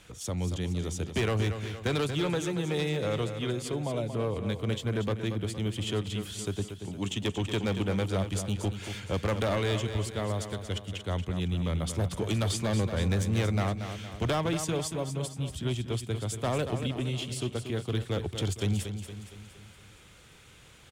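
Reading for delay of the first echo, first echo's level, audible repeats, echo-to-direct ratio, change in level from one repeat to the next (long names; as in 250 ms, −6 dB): 232 ms, −9.0 dB, 5, −7.5 dB, −6.0 dB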